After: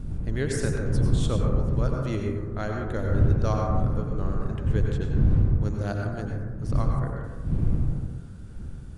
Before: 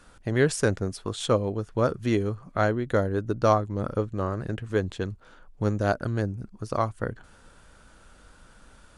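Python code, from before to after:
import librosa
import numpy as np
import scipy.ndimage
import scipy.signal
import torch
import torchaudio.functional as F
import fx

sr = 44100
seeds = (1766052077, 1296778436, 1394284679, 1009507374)

y = fx.dmg_wind(x, sr, seeds[0], corner_hz=120.0, level_db=-24.0)
y = fx.peak_eq(y, sr, hz=840.0, db=-6.5, octaves=2.8)
y = fx.rev_plate(y, sr, seeds[1], rt60_s=1.3, hf_ratio=0.25, predelay_ms=80, drr_db=0.0)
y = y * 10.0 ** (-4.0 / 20.0)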